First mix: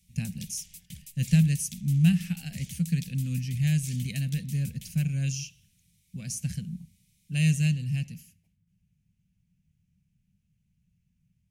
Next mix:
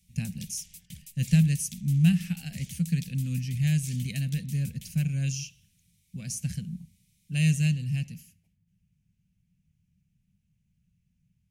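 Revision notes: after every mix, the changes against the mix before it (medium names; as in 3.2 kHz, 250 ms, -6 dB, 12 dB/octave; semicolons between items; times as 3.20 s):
reverb: off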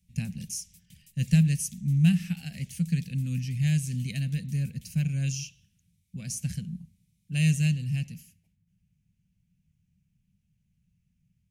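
background -10.0 dB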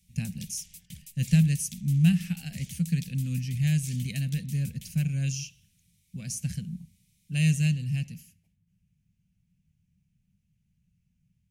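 background +10.0 dB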